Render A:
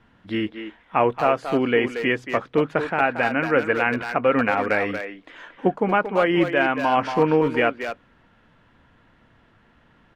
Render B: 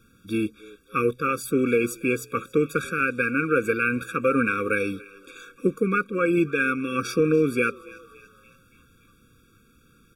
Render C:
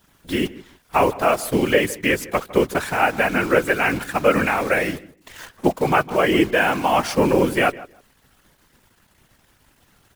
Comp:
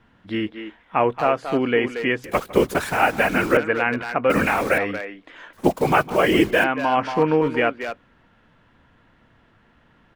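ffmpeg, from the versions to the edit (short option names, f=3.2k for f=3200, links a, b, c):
-filter_complex "[2:a]asplit=3[a][b][c];[0:a]asplit=4[d][e][f][g];[d]atrim=end=2.242[h];[a]atrim=start=2.238:end=3.572[i];[e]atrim=start=3.568:end=4.302[j];[b]atrim=start=4.298:end=4.782[k];[f]atrim=start=4.778:end=5.532[l];[c]atrim=start=5.528:end=6.642[m];[g]atrim=start=6.638[n];[h][i]acrossfade=d=0.004:c1=hsin:c2=hsin[o];[o][j]acrossfade=d=0.004:c1=hsin:c2=hsin[p];[p][k]acrossfade=d=0.004:c1=hsin:c2=hsin[q];[q][l]acrossfade=d=0.004:c1=hsin:c2=hsin[r];[r][m]acrossfade=d=0.004:c1=hsin:c2=hsin[s];[s][n]acrossfade=d=0.004:c1=hsin:c2=hsin"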